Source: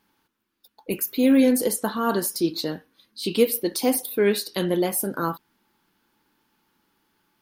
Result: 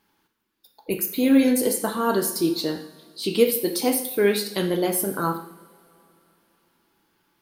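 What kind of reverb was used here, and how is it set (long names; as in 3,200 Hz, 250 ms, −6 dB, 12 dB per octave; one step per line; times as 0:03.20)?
coupled-rooms reverb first 0.7 s, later 3.3 s, from −21 dB, DRR 5.5 dB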